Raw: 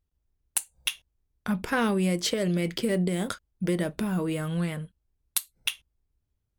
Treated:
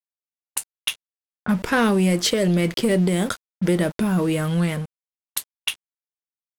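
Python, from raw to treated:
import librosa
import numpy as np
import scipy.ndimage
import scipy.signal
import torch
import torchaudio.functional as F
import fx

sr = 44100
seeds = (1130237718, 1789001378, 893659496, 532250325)

y = np.where(np.abs(x) >= 10.0 ** (-42.0 / 20.0), x, 0.0)
y = fx.leveller(y, sr, passes=2)
y = fx.env_lowpass(y, sr, base_hz=790.0, full_db=-20.5)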